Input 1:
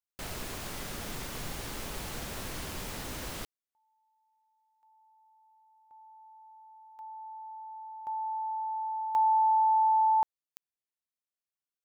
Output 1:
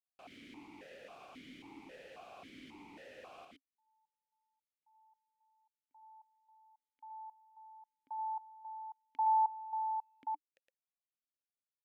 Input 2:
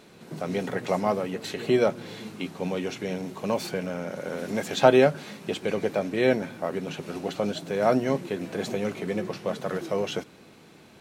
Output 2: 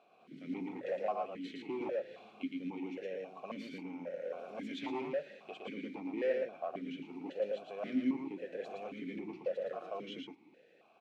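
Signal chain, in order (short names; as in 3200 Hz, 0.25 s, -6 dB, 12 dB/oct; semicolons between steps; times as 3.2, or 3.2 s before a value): hard clip -21 dBFS; echo 0.114 s -3.5 dB; vowel sequencer 3.7 Hz; gain -2 dB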